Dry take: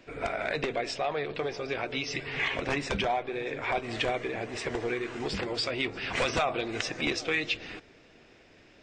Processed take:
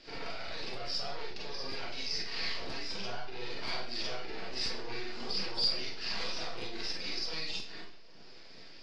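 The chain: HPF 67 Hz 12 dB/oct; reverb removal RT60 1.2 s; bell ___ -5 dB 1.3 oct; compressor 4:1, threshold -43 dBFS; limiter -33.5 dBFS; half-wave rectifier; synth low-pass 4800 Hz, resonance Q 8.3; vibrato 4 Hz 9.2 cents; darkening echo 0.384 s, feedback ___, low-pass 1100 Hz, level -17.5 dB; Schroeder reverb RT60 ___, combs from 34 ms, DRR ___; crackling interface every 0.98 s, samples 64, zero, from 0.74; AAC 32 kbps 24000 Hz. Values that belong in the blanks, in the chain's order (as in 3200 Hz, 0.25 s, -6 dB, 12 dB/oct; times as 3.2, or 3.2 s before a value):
120 Hz, 40%, 0.46 s, -5 dB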